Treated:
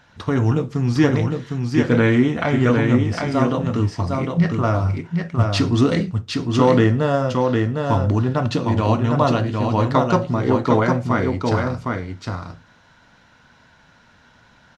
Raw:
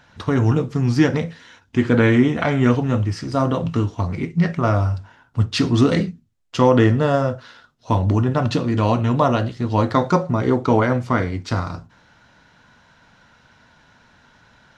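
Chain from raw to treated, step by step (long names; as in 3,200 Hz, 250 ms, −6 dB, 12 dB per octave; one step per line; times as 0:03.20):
single-tap delay 757 ms −4 dB
level −1 dB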